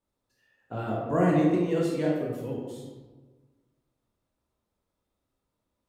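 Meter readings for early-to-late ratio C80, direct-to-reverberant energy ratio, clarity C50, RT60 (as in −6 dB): 3.5 dB, −3.5 dB, 1.0 dB, 1.3 s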